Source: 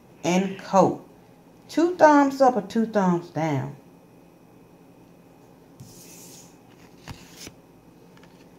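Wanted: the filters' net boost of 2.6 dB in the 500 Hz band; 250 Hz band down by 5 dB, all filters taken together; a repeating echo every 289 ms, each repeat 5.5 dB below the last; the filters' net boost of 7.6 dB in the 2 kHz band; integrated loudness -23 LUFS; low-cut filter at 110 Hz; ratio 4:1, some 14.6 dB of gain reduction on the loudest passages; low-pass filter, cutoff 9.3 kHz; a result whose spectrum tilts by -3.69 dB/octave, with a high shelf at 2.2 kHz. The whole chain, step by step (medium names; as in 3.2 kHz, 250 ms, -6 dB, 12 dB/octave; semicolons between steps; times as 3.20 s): high-pass 110 Hz; low-pass 9.3 kHz; peaking EQ 250 Hz -8.5 dB; peaking EQ 500 Hz +4 dB; peaking EQ 2 kHz +7 dB; treble shelf 2.2 kHz +7.5 dB; compression 4:1, threshold -24 dBFS; feedback delay 289 ms, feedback 53%, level -5.5 dB; trim +6.5 dB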